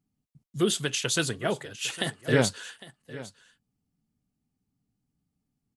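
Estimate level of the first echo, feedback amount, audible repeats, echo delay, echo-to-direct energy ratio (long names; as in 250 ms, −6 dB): −17.5 dB, repeats not evenly spaced, 1, 806 ms, −17.5 dB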